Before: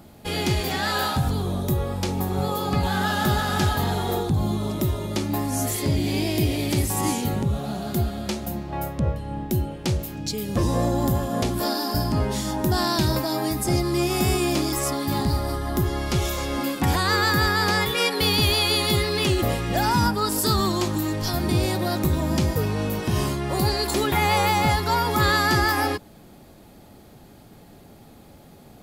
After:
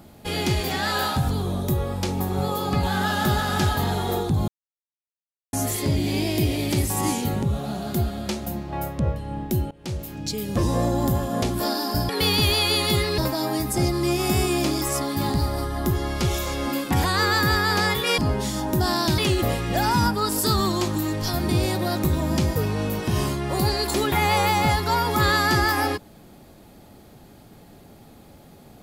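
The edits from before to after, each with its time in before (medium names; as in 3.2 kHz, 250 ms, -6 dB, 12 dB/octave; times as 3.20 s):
4.48–5.53 s: mute
9.71–10.40 s: fade in equal-power, from -21.5 dB
12.09–13.09 s: swap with 18.09–19.18 s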